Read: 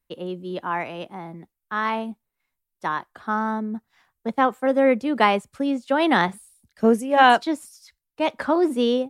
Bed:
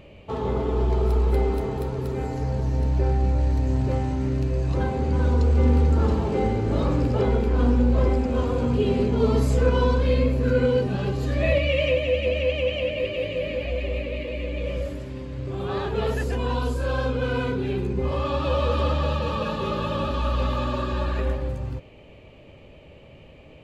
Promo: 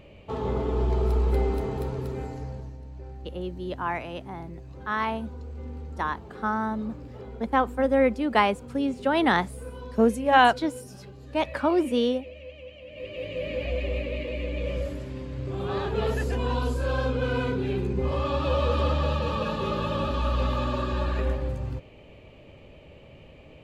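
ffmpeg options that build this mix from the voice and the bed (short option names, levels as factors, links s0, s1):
-filter_complex "[0:a]adelay=3150,volume=0.708[s0];[1:a]volume=5.96,afade=t=out:st=1.9:d=0.88:silence=0.141254,afade=t=in:st=12.86:d=0.81:silence=0.125893[s1];[s0][s1]amix=inputs=2:normalize=0"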